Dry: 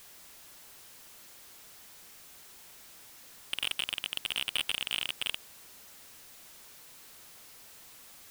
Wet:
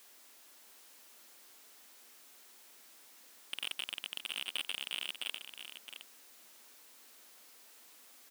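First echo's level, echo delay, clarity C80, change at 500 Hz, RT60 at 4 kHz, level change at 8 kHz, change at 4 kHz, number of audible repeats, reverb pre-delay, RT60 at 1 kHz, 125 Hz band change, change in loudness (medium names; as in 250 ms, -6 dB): -9.0 dB, 666 ms, no reverb, -6.0 dB, no reverb, -6.0 dB, -6.0 dB, 1, no reverb, no reverb, under -20 dB, -7.0 dB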